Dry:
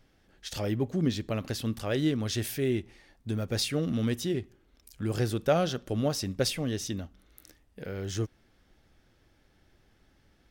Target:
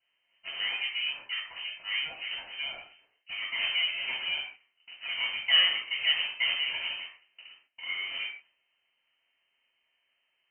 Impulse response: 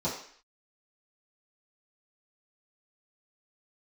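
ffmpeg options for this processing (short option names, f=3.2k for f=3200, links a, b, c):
-filter_complex "[0:a]agate=range=-8dB:threshold=-56dB:ratio=16:detection=peak,highpass=490,aeval=exprs='abs(val(0))':c=same,asettb=1/sr,asplit=3[a][b][c];[a]atrim=end=1.014[d];[b]atrim=start=1.01:end=3.28,asetpts=PTS-STARTPTS,afade=t=in:d=0.004:c=qsin,afade=t=out:st=2.266:d=0.004:c=qsin,acrossover=split=1700[e][f];[e]aeval=exprs='val(0)*(1-1/2+1/2*cos(2*PI*3.2*n/s))':c=same[g];[f]aeval=exprs='val(0)*(1-1/2-1/2*cos(2*PI*3.2*n/s))':c=same[h];[g][h]amix=inputs=2:normalize=0[i];[c]atrim=start=3.276[j];[d][i]acrossfade=d=0.004:c1=hsin:c2=qsin[k];[k][j]acrossfade=d=0.004:c1=qsin:c2=hsin,asoftclip=type=tanh:threshold=-22dB[l];[1:a]atrim=start_sample=2205,afade=t=out:st=0.22:d=0.01,atrim=end_sample=10143[m];[l][m]afir=irnorm=-1:irlink=0,lowpass=f=2.6k:t=q:w=0.5098,lowpass=f=2.6k:t=q:w=0.6013,lowpass=f=2.6k:t=q:w=0.9,lowpass=f=2.6k:t=q:w=2.563,afreqshift=-3100"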